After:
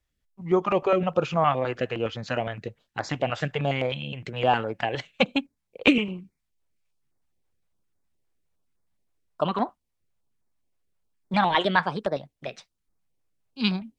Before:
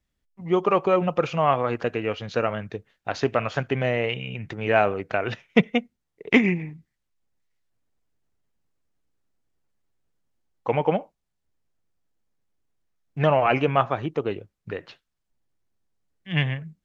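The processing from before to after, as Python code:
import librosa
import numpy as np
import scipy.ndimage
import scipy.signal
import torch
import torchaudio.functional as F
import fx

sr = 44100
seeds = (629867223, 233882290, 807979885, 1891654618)

y = fx.speed_glide(x, sr, from_pct=99, to_pct=142)
y = fx.filter_held_notch(y, sr, hz=9.7, low_hz=200.0, high_hz=2900.0)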